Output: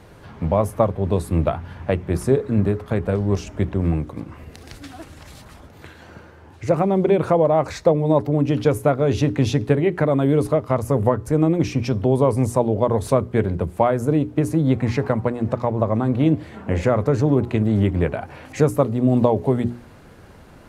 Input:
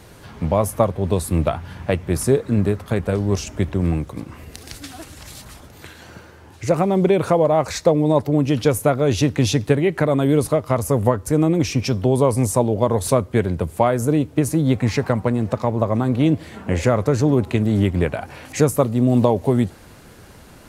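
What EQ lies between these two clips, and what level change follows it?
high-shelf EQ 3,400 Hz −11.5 dB
mains-hum notches 60/120/180/240/300/360/420 Hz
0.0 dB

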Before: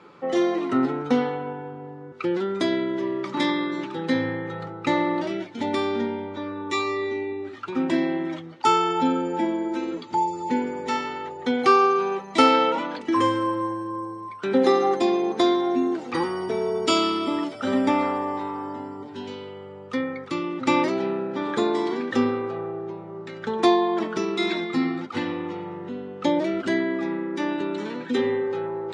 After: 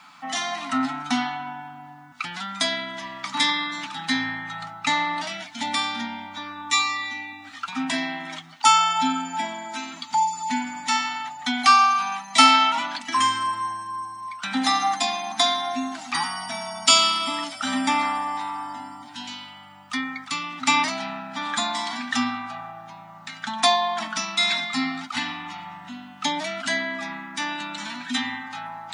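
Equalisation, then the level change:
elliptic band-stop filter 270–680 Hz, stop band 50 dB
RIAA equalisation recording
+3.5 dB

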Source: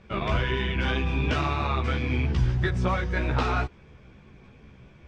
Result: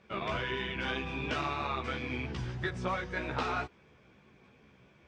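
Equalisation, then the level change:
high-pass filter 270 Hz 6 dB per octave
−5.0 dB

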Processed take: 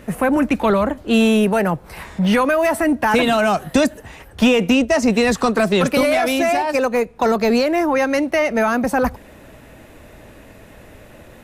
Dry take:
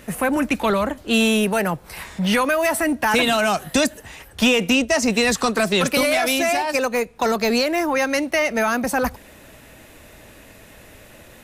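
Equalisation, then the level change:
high-shelf EQ 2,000 Hz −10 dB
+4.5 dB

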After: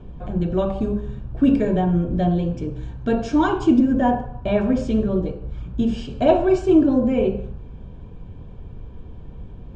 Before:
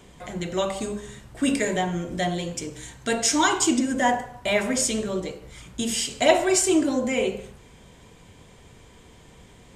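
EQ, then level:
Butterworth band-reject 2,000 Hz, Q 4.9
high-frequency loss of the air 170 metres
spectral tilt −4 dB per octave
0.0 dB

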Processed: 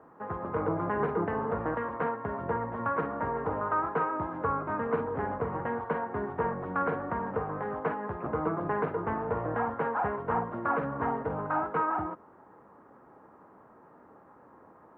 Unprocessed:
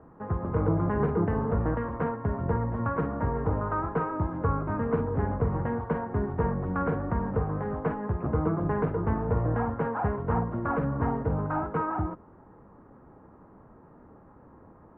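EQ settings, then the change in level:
high-pass filter 650 Hz 6 dB per octave
+3.5 dB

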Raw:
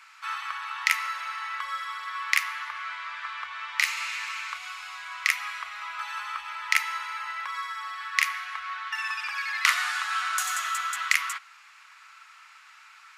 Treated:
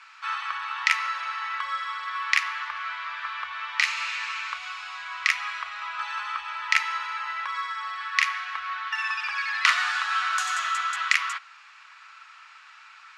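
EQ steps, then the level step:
low-pass filter 5,300 Hz 12 dB per octave
notch filter 2,100 Hz, Q 17
+3.0 dB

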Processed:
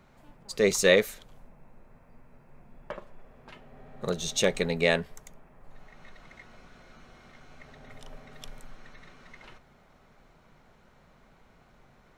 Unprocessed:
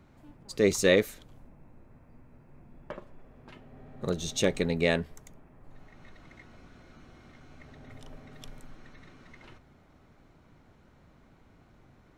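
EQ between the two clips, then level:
parametric band 88 Hz −10.5 dB 1.4 octaves
parametric band 300 Hz −10 dB 0.5 octaves
+3.5 dB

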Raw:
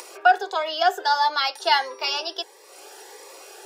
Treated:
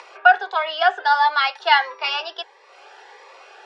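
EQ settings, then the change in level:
dynamic equaliser 2,200 Hz, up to +4 dB, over −31 dBFS, Q 0.72
band-pass filter 750–2,900 Hz
high-frequency loss of the air 55 metres
+4.5 dB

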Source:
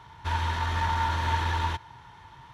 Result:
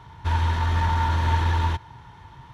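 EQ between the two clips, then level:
low-shelf EQ 460 Hz +8 dB
0.0 dB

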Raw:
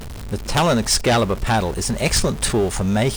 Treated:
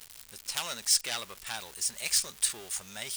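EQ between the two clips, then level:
first-order pre-emphasis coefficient 0.97
parametric band 2,300 Hz +4 dB 2.6 octaves
−6.0 dB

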